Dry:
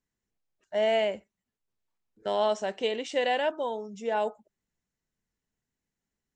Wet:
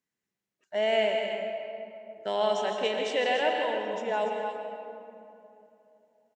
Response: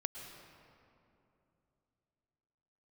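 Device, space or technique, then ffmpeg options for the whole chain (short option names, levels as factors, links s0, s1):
stadium PA: -filter_complex "[0:a]highpass=150,equalizer=f=2300:t=o:w=1.2:g=3.5,aecho=1:1:160.3|288.6:0.316|0.355[s0];[1:a]atrim=start_sample=2205[s1];[s0][s1]afir=irnorm=-1:irlink=0"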